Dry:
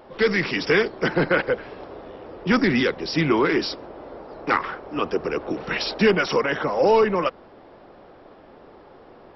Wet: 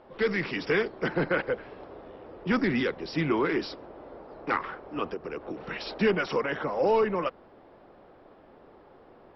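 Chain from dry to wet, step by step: air absorption 130 m; 5.13–5.87 compressor 5:1, threshold -26 dBFS, peak gain reduction 8 dB; gain -6 dB

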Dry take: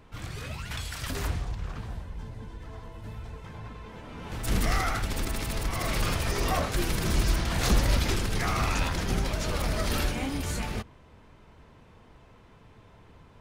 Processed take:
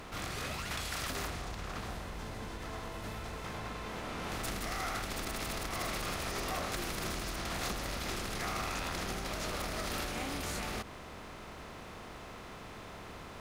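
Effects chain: per-bin compression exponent 0.6; in parallel at -9 dB: hard clip -19.5 dBFS, distortion -14 dB; on the sum: bit-crush 11-bit; compressor, threshold -23 dBFS, peak gain reduction 8.5 dB; low shelf 200 Hz -10 dB; gain -6.5 dB

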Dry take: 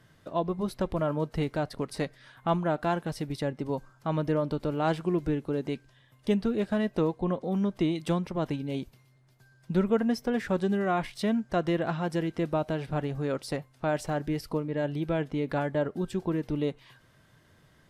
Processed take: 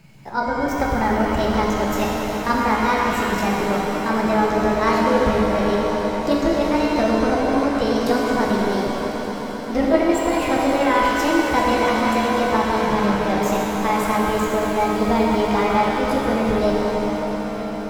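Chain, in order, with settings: delay-line pitch shifter +6 st; resonant low shelf 190 Hz +8 dB, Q 1.5; on a send: swelling echo 0.131 s, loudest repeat 5, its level -17 dB; on the sum: shimmer reverb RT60 3.1 s, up +7 st, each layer -8 dB, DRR -2.5 dB; gain +6.5 dB

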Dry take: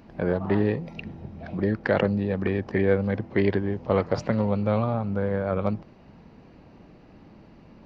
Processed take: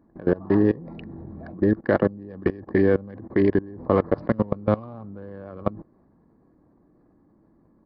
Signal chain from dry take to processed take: Wiener smoothing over 15 samples; bell 2900 Hz -8 dB 0.82 oct; small resonant body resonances 310/1100/1700/2900 Hz, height 8 dB, ringing for 25 ms; downsampling 11025 Hz; level quantiser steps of 21 dB; gain +3.5 dB

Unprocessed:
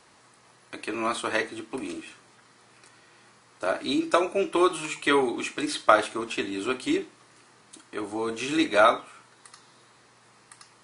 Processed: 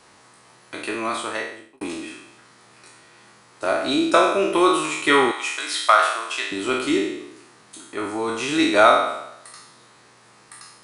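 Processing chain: spectral trails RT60 0.85 s; 0.81–1.81 fade out; 5.31–6.52 HPF 880 Hz 12 dB/oct; gain +3 dB

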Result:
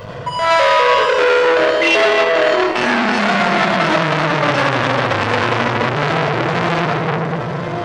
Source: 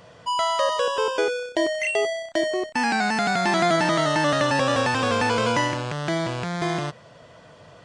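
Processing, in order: bell 8400 Hz -10 dB 1.4 oct; in parallel at 0 dB: compressor, threshold -33 dBFS, peak gain reduction 15.5 dB; on the sum: tremolo 1.5 Hz, depth 63%; on a send: diffused feedback echo 1.053 s, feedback 44%, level -14 dB; on the sum: shoebox room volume 2300 m³, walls mixed, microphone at 5.2 m; maximiser +8.5 dB; core saturation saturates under 1500 Hz

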